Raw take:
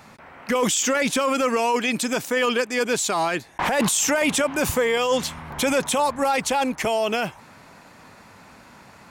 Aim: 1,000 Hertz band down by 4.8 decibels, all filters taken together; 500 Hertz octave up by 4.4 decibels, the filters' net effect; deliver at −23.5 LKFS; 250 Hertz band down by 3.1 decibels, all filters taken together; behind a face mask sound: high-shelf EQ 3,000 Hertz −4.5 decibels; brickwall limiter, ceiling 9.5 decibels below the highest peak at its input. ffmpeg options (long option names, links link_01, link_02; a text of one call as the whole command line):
ffmpeg -i in.wav -af "equalizer=frequency=250:width_type=o:gain=-5,equalizer=frequency=500:width_type=o:gain=8,equalizer=frequency=1000:width_type=o:gain=-8.5,alimiter=limit=-16dB:level=0:latency=1,highshelf=frequency=3000:gain=-4.5,volume=1.5dB" out.wav